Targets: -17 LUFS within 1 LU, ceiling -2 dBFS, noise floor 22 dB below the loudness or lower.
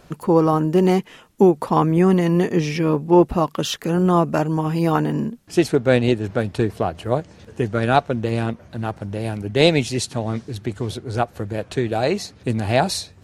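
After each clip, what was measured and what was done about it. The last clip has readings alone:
loudness -20.5 LUFS; peak -1.0 dBFS; loudness target -17.0 LUFS
-> gain +3.5 dB; limiter -2 dBFS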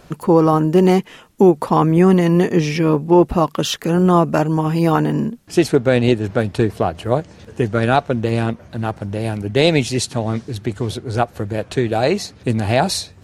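loudness -17.5 LUFS; peak -2.0 dBFS; noise floor -45 dBFS

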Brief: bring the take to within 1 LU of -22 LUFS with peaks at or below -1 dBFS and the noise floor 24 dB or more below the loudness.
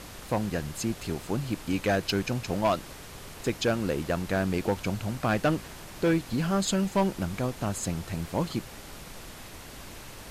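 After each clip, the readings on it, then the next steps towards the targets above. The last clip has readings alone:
clipped 0.7%; flat tops at -18.5 dBFS; noise floor -44 dBFS; noise floor target -54 dBFS; loudness -29.5 LUFS; peak -18.5 dBFS; loudness target -22.0 LUFS
-> clip repair -18.5 dBFS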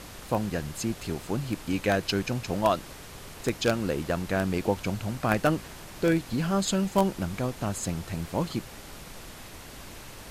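clipped 0.0%; noise floor -44 dBFS; noise floor target -53 dBFS
-> noise print and reduce 9 dB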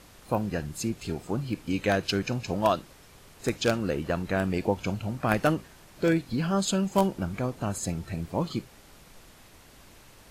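noise floor -53 dBFS; loudness -29.0 LUFS; peak -9.5 dBFS; loudness target -22.0 LUFS
-> gain +7 dB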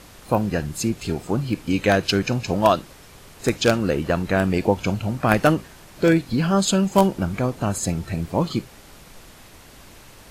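loudness -22.0 LUFS; peak -2.5 dBFS; noise floor -46 dBFS

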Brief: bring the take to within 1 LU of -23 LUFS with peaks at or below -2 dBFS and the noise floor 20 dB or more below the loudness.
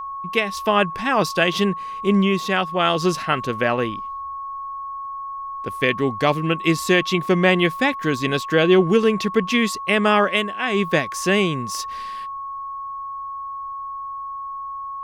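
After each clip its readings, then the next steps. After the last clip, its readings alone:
steady tone 1100 Hz; tone level -28 dBFS; loudness -21.0 LUFS; peak -4.5 dBFS; loudness target -23.0 LUFS
-> notch 1100 Hz, Q 30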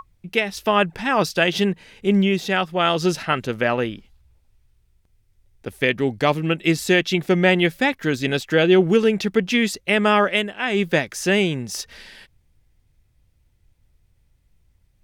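steady tone none; loudness -20.0 LUFS; peak -4.5 dBFS; loudness target -23.0 LUFS
-> gain -3 dB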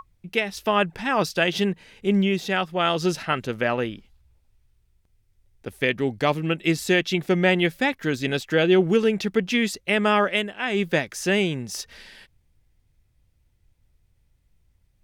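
loudness -23.0 LUFS; peak -7.5 dBFS; noise floor -66 dBFS

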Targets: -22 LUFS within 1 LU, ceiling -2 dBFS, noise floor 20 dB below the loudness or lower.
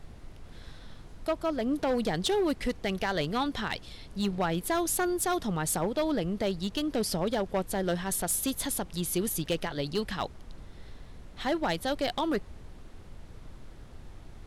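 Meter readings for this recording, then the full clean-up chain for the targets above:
clipped 1.5%; flat tops at -22.0 dBFS; noise floor -49 dBFS; noise floor target -51 dBFS; loudness -30.5 LUFS; peak -22.0 dBFS; loudness target -22.0 LUFS
-> clip repair -22 dBFS; noise print and reduce 6 dB; gain +8.5 dB

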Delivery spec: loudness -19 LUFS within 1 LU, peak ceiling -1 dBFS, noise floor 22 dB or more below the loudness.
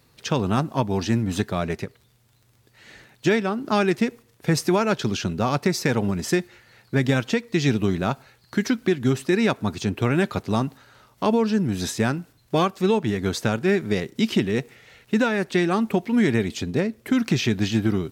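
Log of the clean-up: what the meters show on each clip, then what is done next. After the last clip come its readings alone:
ticks 21/s; loudness -23.5 LUFS; peak -6.5 dBFS; loudness target -19.0 LUFS
-> de-click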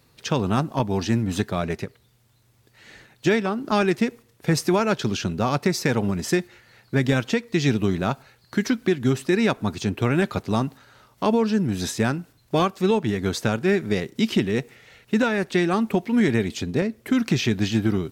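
ticks 0.17/s; loudness -23.5 LUFS; peak -6.5 dBFS; loudness target -19.0 LUFS
-> gain +4.5 dB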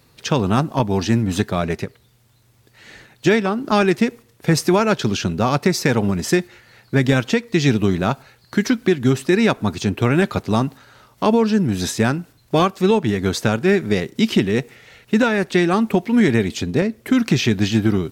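loudness -19.0 LUFS; peak -2.0 dBFS; noise floor -56 dBFS

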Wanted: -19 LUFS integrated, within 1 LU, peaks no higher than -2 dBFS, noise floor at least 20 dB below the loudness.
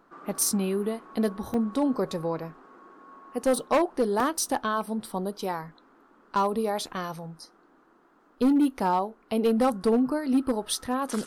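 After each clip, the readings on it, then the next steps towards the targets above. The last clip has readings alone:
clipped 0.9%; flat tops at -17.0 dBFS; dropouts 2; longest dropout 2.7 ms; loudness -27.0 LUFS; peak -17.0 dBFS; loudness target -19.0 LUFS
-> clip repair -17 dBFS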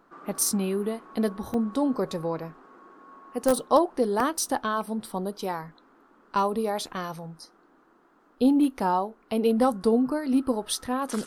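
clipped 0.0%; dropouts 2; longest dropout 2.7 ms
-> interpolate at 1.54/4.2, 2.7 ms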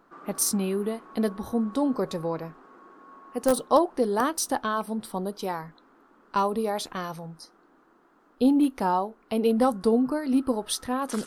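dropouts 0; loudness -26.5 LUFS; peak -8.0 dBFS; loudness target -19.0 LUFS
-> gain +7.5 dB; limiter -2 dBFS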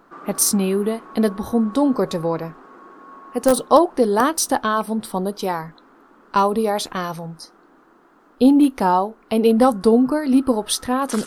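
loudness -19.0 LUFS; peak -2.0 dBFS; noise floor -53 dBFS

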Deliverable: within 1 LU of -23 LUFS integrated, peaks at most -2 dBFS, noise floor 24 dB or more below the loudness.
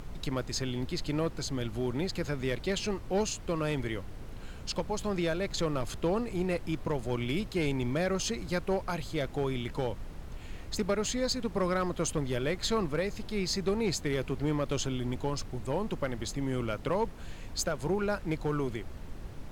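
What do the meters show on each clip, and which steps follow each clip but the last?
clipped 0.6%; flat tops at -22.0 dBFS; noise floor -43 dBFS; noise floor target -57 dBFS; loudness -32.5 LUFS; peak -22.0 dBFS; loudness target -23.0 LUFS
-> clip repair -22 dBFS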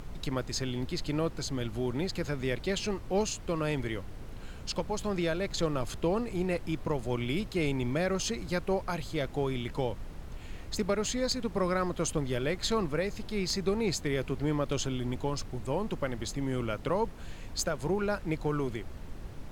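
clipped 0.0%; noise floor -43 dBFS; noise floor target -57 dBFS
-> noise print and reduce 14 dB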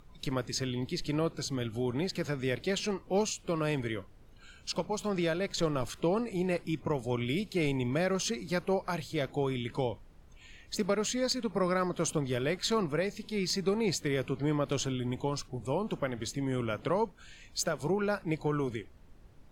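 noise floor -55 dBFS; noise floor target -57 dBFS
-> noise print and reduce 6 dB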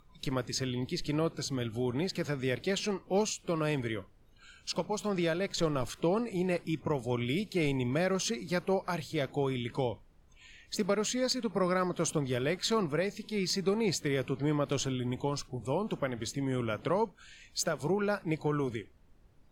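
noise floor -60 dBFS; loudness -32.5 LUFS; peak -16.0 dBFS; loudness target -23.0 LUFS
-> gain +9.5 dB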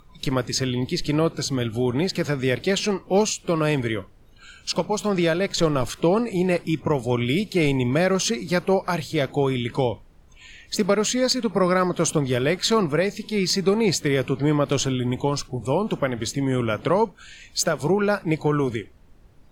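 loudness -23.0 LUFS; peak -6.5 dBFS; noise floor -51 dBFS

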